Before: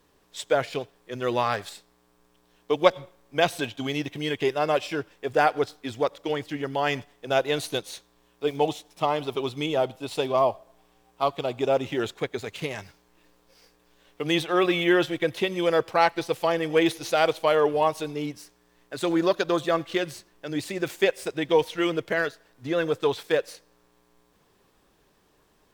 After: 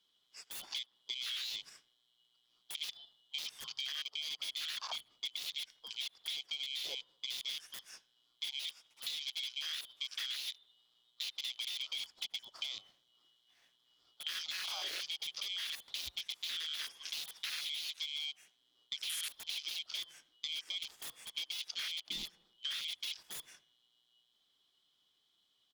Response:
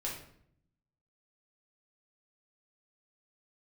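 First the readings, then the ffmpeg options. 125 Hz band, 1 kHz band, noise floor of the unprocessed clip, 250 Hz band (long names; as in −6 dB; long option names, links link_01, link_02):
below −35 dB, −30.5 dB, −64 dBFS, below −40 dB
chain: -filter_complex "[0:a]afftfilt=real='real(if(lt(b,272),68*(eq(floor(b/68),0)*1+eq(floor(b/68),1)*3+eq(floor(b/68),2)*0+eq(floor(b/68),3)*2)+mod(b,68),b),0)':imag='imag(if(lt(b,272),68*(eq(floor(b/68),0)*1+eq(floor(b/68),1)*3+eq(floor(b/68),2)*0+eq(floor(b/68),3)*2)+mod(b,68),b),0)':win_size=2048:overlap=0.75,highshelf=frequency=6900:gain=-11,acrossover=split=150|3100[link_01][link_02][link_03];[link_02]aeval=exprs='0.0335*(abs(mod(val(0)/0.0335+3,4)-2)-1)':channel_layout=same[link_04];[link_03]acontrast=24[link_05];[link_01][link_04][link_05]amix=inputs=3:normalize=0,aeval=exprs='(mod(10.6*val(0)+1,2)-1)/10.6':channel_layout=same,lowshelf=frequency=260:gain=-9,asplit=2[link_06][link_07];[link_07]adelay=78,lowpass=frequency=1800:poles=1,volume=-21dB,asplit=2[link_08][link_09];[link_09]adelay=78,lowpass=frequency=1800:poles=1,volume=0.53,asplit=2[link_10][link_11];[link_11]adelay=78,lowpass=frequency=1800:poles=1,volume=0.53,asplit=2[link_12][link_13];[link_13]adelay=78,lowpass=frequency=1800:poles=1,volume=0.53[link_14];[link_06][link_08][link_10][link_12][link_14]amix=inputs=5:normalize=0,alimiter=level_in=2dB:limit=-24dB:level=0:latency=1:release=137,volume=-2dB,afwtdn=0.0158,acompressor=threshold=-41dB:ratio=5,volume=3.5dB"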